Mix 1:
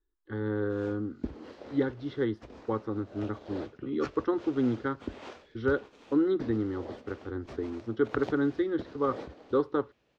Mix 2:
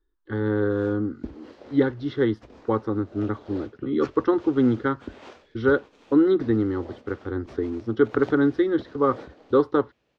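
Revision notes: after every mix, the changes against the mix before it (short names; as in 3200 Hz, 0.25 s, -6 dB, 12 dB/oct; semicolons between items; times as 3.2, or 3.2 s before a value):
speech +8.5 dB; reverb: off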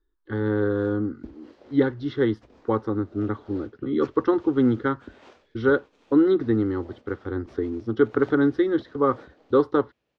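background -6.0 dB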